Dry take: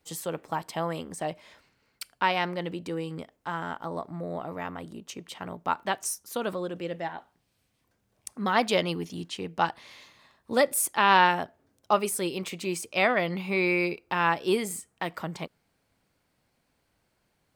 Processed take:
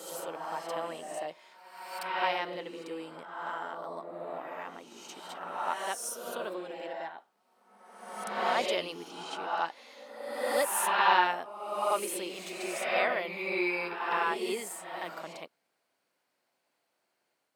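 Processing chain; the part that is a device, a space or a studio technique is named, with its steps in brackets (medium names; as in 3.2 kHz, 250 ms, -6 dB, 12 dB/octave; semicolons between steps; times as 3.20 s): ghost voice (reverse; reverberation RT60 1.4 s, pre-delay 34 ms, DRR -1 dB; reverse; high-pass 370 Hz 12 dB/octave); trim -7 dB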